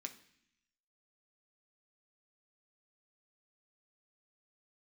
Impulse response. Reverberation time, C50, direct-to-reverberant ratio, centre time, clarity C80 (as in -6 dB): 0.65 s, 13.5 dB, 4.0 dB, 9 ms, 16.5 dB